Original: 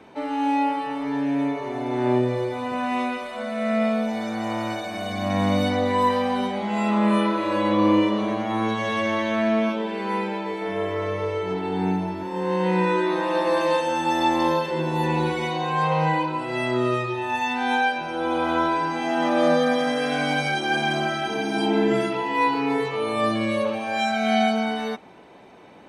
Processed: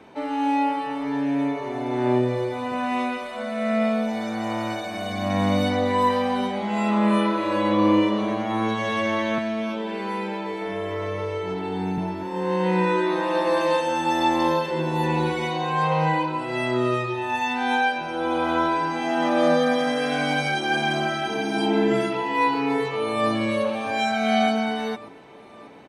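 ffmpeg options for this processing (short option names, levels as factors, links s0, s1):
-filter_complex "[0:a]asettb=1/sr,asplit=3[s0][s1][s2];[s0]atrim=end=9.384[s3];[s1]atrim=start=9.38:end=11.98,asetpts=PTS-STARTPTS,afade=t=in:d=0.004:c=qsin,afade=t=out:st=2.596:d=0.004:c=qsin,acrossover=split=130|3000[s4][s5][s6];[s5]acompressor=threshold=0.0631:ratio=6:attack=3.2:release=140:knee=2.83:detection=peak[s7];[s4][s7][s6]amix=inputs=3:normalize=0[s8];[s2]atrim=start=11.976[s9];[s3][s8]acrossfade=d=0.004:c1=hsin:c2=qsin[s10];[s10][s9]acrossfade=d=0.004:c1=qsin:c2=hsin,asplit=2[s11][s12];[s12]afade=t=in:st=22.66:d=0.01,afade=t=out:st=23.31:d=0.01,aecho=0:1:590|1180|1770|2360|2950|3540|4130|4720:0.223872|0.145517|0.094586|0.0614809|0.0399626|0.0259757|0.0168842|0.0109747[s13];[s11][s13]amix=inputs=2:normalize=0"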